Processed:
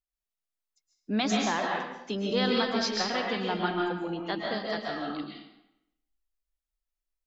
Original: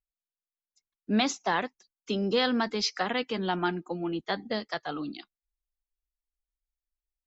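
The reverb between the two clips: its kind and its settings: algorithmic reverb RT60 0.85 s, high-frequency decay 0.85×, pre-delay 95 ms, DRR -1.5 dB; trim -3 dB

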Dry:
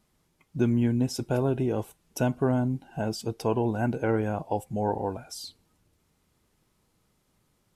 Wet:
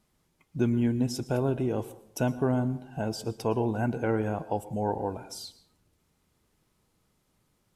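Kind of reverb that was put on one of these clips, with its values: plate-style reverb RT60 0.66 s, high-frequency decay 0.6×, pre-delay 100 ms, DRR 16 dB; trim -1.5 dB

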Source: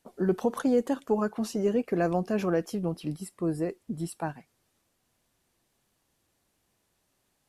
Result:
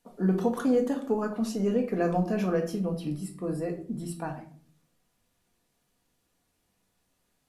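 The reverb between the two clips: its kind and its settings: simulated room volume 430 m³, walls furnished, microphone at 1.8 m; trim -3 dB

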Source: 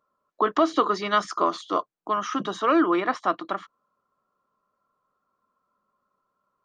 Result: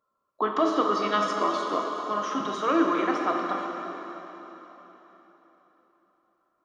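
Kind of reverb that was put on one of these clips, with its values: plate-style reverb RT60 4 s, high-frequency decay 0.9×, DRR 0 dB; trim -4.5 dB

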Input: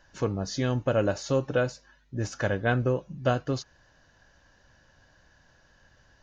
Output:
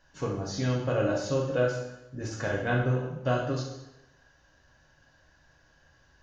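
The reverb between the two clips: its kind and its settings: plate-style reverb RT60 0.91 s, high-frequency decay 0.9×, DRR -3 dB; trim -6 dB

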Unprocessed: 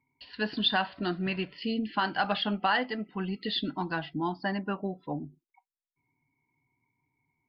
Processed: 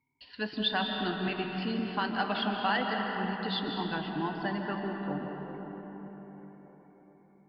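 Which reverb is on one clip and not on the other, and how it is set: algorithmic reverb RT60 5 s, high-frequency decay 0.45×, pre-delay 105 ms, DRR 1.5 dB; trim -3.5 dB

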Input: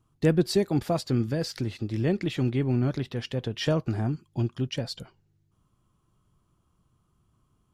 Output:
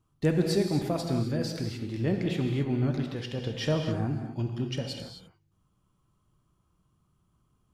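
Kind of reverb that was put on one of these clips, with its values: gated-style reverb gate 290 ms flat, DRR 3 dB; trim -3.5 dB

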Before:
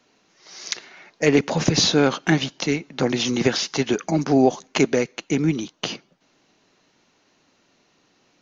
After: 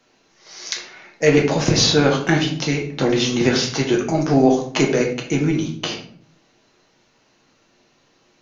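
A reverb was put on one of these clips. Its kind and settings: simulated room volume 64 m³, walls mixed, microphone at 0.7 m

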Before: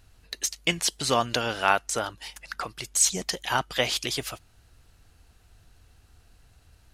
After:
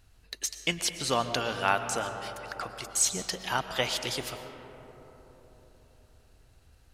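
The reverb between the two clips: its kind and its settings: algorithmic reverb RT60 4.2 s, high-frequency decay 0.3×, pre-delay 80 ms, DRR 8 dB; trim -4 dB

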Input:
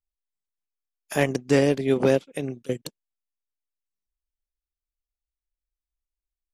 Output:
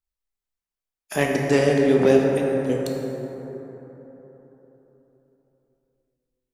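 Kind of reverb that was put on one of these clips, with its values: plate-style reverb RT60 4 s, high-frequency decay 0.35×, DRR -1 dB

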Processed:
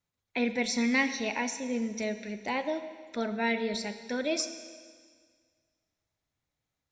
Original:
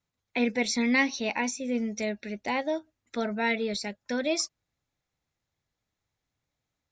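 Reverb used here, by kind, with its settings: Schroeder reverb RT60 1.8 s, combs from 27 ms, DRR 9.5 dB; trim -2.5 dB

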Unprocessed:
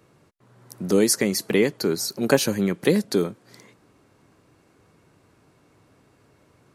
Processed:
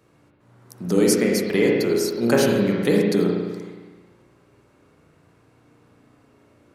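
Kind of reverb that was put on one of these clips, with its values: spring tank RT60 1.4 s, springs 34/51 ms, chirp 55 ms, DRR -2 dB; trim -2.5 dB

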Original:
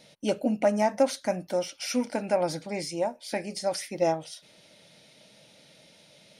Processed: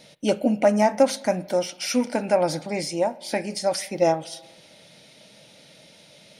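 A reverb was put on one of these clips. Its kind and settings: spring tank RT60 1.2 s, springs 38/53 ms, chirp 30 ms, DRR 18.5 dB; trim +5 dB

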